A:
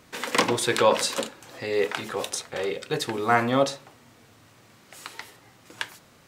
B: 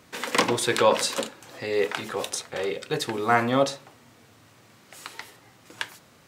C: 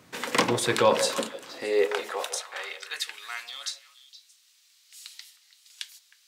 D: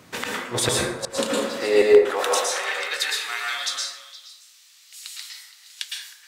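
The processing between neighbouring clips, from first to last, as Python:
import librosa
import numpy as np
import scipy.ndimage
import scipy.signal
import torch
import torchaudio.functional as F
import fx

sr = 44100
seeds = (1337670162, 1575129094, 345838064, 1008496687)

y1 = scipy.signal.sosfilt(scipy.signal.butter(2, 58.0, 'highpass', fs=sr, output='sos'), x)
y2 = fx.filter_sweep_highpass(y1, sr, from_hz=110.0, to_hz=4000.0, start_s=0.93, end_s=3.5, q=1.3)
y2 = fx.echo_stepped(y2, sr, ms=156, hz=550.0, octaves=1.4, feedback_pct=70, wet_db=-8.5)
y2 = F.gain(torch.from_numpy(y2), -1.5).numpy()
y3 = fx.gate_flip(y2, sr, shuts_db=-13.0, range_db=-37)
y3 = fx.rev_plate(y3, sr, seeds[0], rt60_s=0.92, hf_ratio=0.5, predelay_ms=100, drr_db=-3.0)
y3 = F.gain(torch.from_numpy(y3), 5.5).numpy()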